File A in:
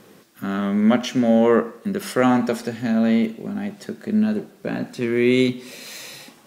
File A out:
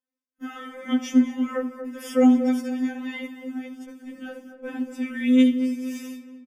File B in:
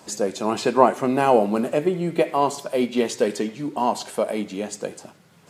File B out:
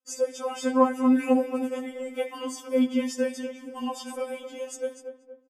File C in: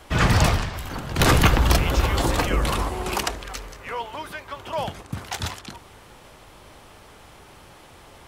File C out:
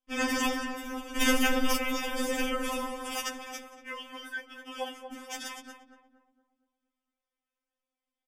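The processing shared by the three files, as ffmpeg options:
-filter_complex "[0:a]agate=range=-37dB:threshold=-37dB:ratio=16:detection=peak,asuperstop=centerf=4100:order=8:qfactor=5.4,equalizer=frequency=860:width=5.4:gain=-12,asplit=2[link_01][link_02];[link_02]adelay=234,lowpass=frequency=1200:poles=1,volume=-8dB,asplit=2[link_03][link_04];[link_04]adelay=234,lowpass=frequency=1200:poles=1,volume=0.48,asplit=2[link_05][link_06];[link_06]adelay=234,lowpass=frequency=1200:poles=1,volume=0.48,asplit=2[link_07][link_08];[link_08]adelay=234,lowpass=frequency=1200:poles=1,volume=0.48,asplit=2[link_09][link_10];[link_10]adelay=234,lowpass=frequency=1200:poles=1,volume=0.48,asplit=2[link_11][link_12];[link_12]adelay=234,lowpass=frequency=1200:poles=1,volume=0.48[link_13];[link_03][link_05][link_07][link_09][link_11][link_13]amix=inputs=6:normalize=0[link_14];[link_01][link_14]amix=inputs=2:normalize=0,afftfilt=real='re*3.46*eq(mod(b,12),0)':imag='im*3.46*eq(mod(b,12),0)':win_size=2048:overlap=0.75,volume=-3.5dB"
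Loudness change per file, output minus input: −2.5, −5.0, −8.5 LU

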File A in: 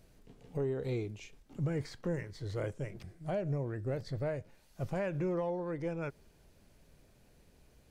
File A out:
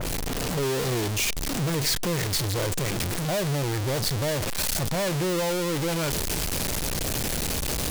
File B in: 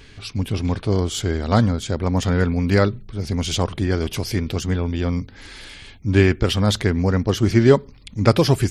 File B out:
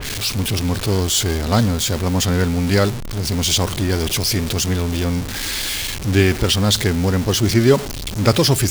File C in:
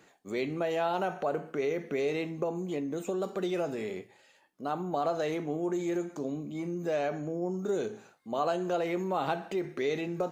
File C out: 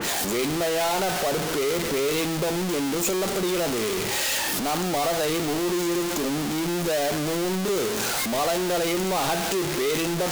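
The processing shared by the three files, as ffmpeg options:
-af "aeval=exprs='val(0)+0.5*0.0794*sgn(val(0))':channel_layout=same,adynamicequalizer=threshold=0.0112:dfrequency=2900:dqfactor=0.7:tfrequency=2900:tqfactor=0.7:attack=5:release=100:ratio=0.375:range=3.5:mode=boostabove:tftype=highshelf,volume=-1dB"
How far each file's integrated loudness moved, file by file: +11.5, +2.0, +8.5 LU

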